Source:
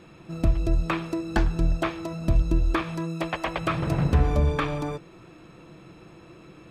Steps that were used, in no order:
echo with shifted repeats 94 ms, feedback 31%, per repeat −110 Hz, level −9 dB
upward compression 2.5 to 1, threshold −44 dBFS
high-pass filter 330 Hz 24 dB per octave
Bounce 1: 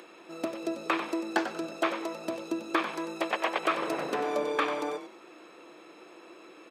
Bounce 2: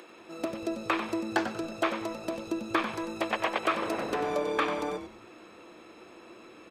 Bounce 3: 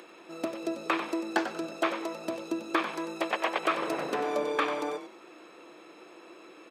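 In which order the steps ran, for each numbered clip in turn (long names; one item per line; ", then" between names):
echo with shifted repeats, then upward compression, then high-pass filter
upward compression, then high-pass filter, then echo with shifted repeats
upward compression, then echo with shifted repeats, then high-pass filter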